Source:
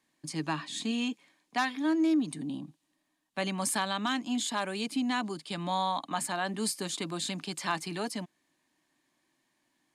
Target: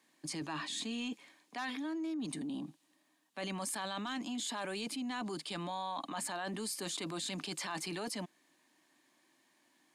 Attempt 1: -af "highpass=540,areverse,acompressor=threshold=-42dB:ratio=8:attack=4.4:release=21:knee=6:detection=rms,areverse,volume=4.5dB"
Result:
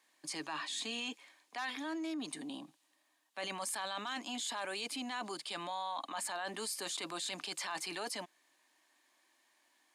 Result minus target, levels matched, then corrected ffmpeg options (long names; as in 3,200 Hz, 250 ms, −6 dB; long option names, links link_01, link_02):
250 Hz band −5.0 dB
-af "highpass=210,areverse,acompressor=threshold=-42dB:ratio=8:attack=4.4:release=21:knee=6:detection=rms,areverse,volume=4.5dB"